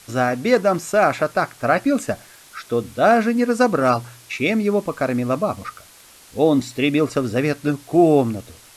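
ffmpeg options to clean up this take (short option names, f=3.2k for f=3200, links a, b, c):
-af "adeclick=t=4,afftdn=nr=17:nf=-47"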